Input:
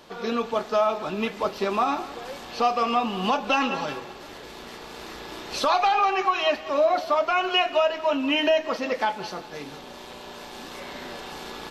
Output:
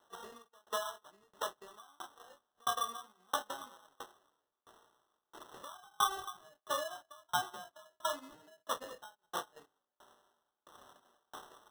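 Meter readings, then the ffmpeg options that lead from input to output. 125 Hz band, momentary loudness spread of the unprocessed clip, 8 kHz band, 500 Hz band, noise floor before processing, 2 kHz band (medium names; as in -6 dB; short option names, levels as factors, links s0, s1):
-21.0 dB, 18 LU, -2.0 dB, -21.5 dB, -42 dBFS, -17.0 dB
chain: -af "flanger=delay=20:depth=8:speed=0.8,equalizer=f=1200:t=o:w=0.28:g=3.5,acompressor=threshold=0.02:ratio=4,agate=range=0.126:threshold=0.0126:ratio=16:detection=peak,highpass=f=840:p=1,highshelf=f=2000:t=q:w=1.5:g=-13.5,acrusher=samples=19:mix=1:aa=0.000001,aeval=exprs='val(0)*pow(10,-38*if(lt(mod(1.5*n/s,1),2*abs(1.5)/1000),1-mod(1.5*n/s,1)/(2*abs(1.5)/1000),(mod(1.5*n/s,1)-2*abs(1.5)/1000)/(1-2*abs(1.5)/1000))/20)':c=same,volume=2.11"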